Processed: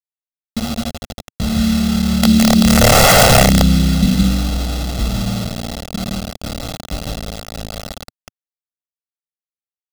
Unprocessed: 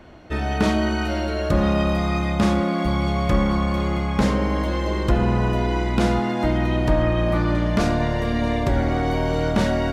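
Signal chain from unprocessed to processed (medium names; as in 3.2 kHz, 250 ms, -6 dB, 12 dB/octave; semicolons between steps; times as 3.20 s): Doppler pass-by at 3.04 s, 24 m/s, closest 1.8 m; low-pass sweep 270 Hz -> 1.9 kHz, 6.28–9.68 s; delay 166 ms -3 dB; in parallel at -7 dB: integer overflow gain 25 dB; on the sum: peaking EQ 1.1 kHz -4.5 dB 1.6 oct; bit crusher 7-bit; graphic EQ 125/250/500/1000/2000/4000 Hz -3/+4/-4/-5/-7/+7 dB; integer overflow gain 21 dB; comb 1.5 ms, depth 75%; loudness maximiser +20.5 dB; trim -1 dB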